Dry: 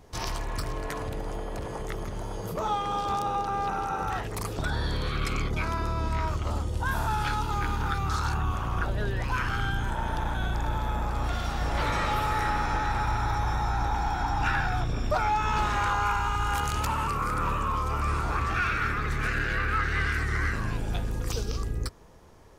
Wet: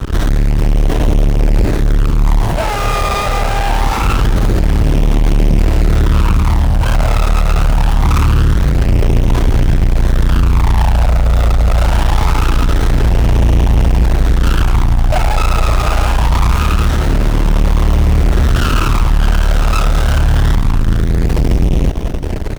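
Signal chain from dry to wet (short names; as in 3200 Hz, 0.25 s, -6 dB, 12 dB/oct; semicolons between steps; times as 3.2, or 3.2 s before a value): low shelf 79 Hz +9.5 dB; comb 3.1 ms, depth 47%; in parallel at +1 dB: limiter -18 dBFS, peak gain reduction 7.5 dB; on the sum: fuzz box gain 46 dB, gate -38 dBFS; phaser stages 12, 0.24 Hz, lowest notch 300–1500 Hz; on a send: split-band echo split 1100 Hz, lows 0.38 s, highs 0.214 s, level -14 dB; on the sum: running maximum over 17 samples; gain +3.5 dB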